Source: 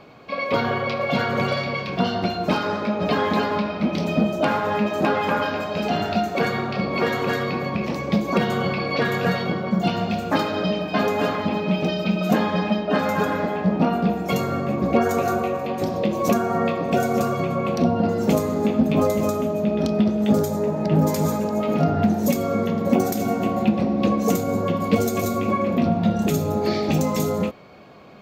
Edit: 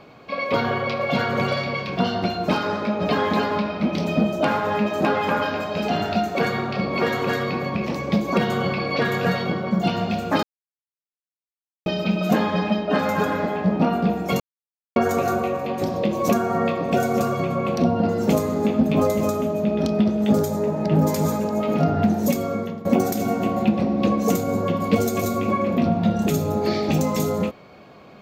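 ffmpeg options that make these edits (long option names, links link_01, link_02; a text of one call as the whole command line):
ffmpeg -i in.wav -filter_complex "[0:a]asplit=6[link_01][link_02][link_03][link_04][link_05][link_06];[link_01]atrim=end=10.43,asetpts=PTS-STARTPTS,afade=type=out:start_time=10.426:duration=0.004:curve=hsin[link_07];[link_02]atrim=start=10.43:end=11.86,asetpts=PTS-STARTPTS,volume=0[link_08];[link_03]atrim=start=11.86:end=14.4,asetpts=PTS-STARTPTS,afade=type=in:duration=0.004:curve=hsin,afade=type=out:start_time=2.536:duration=0.004:curve=hsin[link_09];[link_04]atrim=start=14.4:end=14.96,asetpts=PTS-STARTPTS,volume=0[link_10];[link_05]atrim=start=14.96:end=22.85,asetpts=PTS-STARTPTS,afade=type=in:duration=0.004:curve=hsin,afade=type=out:start_time=7.19:duration=0.7:curve=qsin:silence=0.199526[link_11];[link_06]atrim=start=22.85,asetpts=PTS-STARTPTS,afade=type=in:duration=0.004:curve=hsin:silence=0.199526[link_12];[link_07][link_08][link_09][link_10][link_11][link_12]concat=n=6:v=0:a=1" out.wav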